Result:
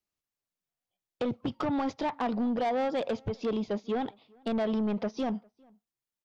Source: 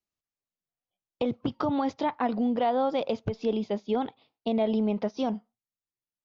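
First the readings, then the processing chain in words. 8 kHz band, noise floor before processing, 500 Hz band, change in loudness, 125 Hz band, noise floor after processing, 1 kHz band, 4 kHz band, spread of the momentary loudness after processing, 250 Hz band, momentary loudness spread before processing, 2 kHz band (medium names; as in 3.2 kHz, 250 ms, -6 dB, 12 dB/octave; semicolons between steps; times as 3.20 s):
no reading, under -85 dBFS, -3.0 dB, -2.5 dB, -2.0 dB, under -85 dBFS, -3.5 dB, -2.5 dB, 6 LU, -2.5 dB, 6 LU, +0.5 dB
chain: saturation -25.5 dBFS, distortion -12 dB; echo from a far wall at 69 m, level -29 dB; trim +1 dB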